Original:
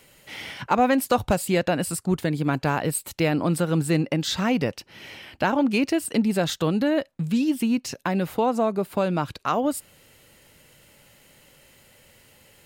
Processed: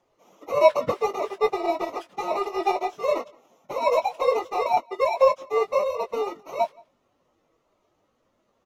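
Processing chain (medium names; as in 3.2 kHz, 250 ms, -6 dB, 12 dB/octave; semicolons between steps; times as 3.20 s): bit-reversed sample order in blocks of 64 samples; graphic EQ 250/500/4000/8000 Hz +9/+8/-10/-4 dB; in parallel at -11 dB: saturation -17.5 dBFS, distortion -9 dB; on the sum: plain phase-vocoder stretch 1.6×; distance through air 270 m; doubling 48 ms -6 dB; echo from a far wall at 69 m, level -18 dB; speed mistake 33 rpm record played at 78 rpm; upward expansion 1.5:1, over -37 dBFS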